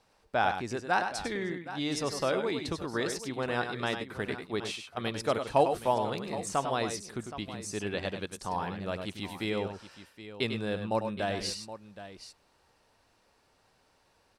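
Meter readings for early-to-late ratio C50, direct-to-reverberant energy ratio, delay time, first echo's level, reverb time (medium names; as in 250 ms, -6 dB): no reverb, no reverb, 99 ms, -8.0 dB, no reverb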